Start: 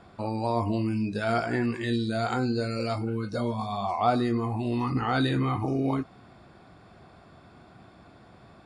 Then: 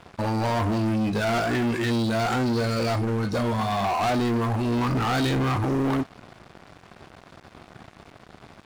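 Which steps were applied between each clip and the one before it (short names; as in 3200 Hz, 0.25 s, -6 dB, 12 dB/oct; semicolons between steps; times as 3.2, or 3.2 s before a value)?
sample leveller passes 5; gain -8 dB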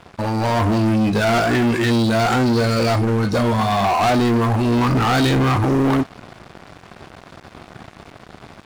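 AGC gain up to 3.5 dB; gain +3.5 dB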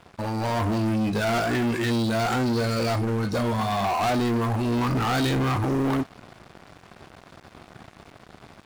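high shelf 9500 Hz +5 dB; gain -7 dB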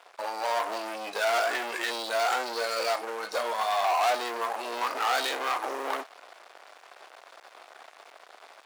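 HPF 520 Hz 24 dB/oct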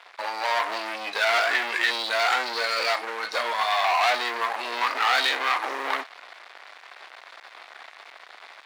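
graphic EQ 125/250/1000/2000/4000 Hz -4/+5/+5/+11/+9 dB; gain -3.5 dB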